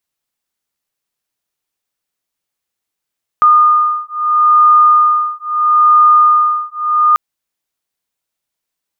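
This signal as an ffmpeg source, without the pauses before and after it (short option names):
-f lavfi -i "aevalsrc='0.316*(sin(2*PI*1220*t)+sin(2*PI*1220.76*t))':d=3.74:s=44100"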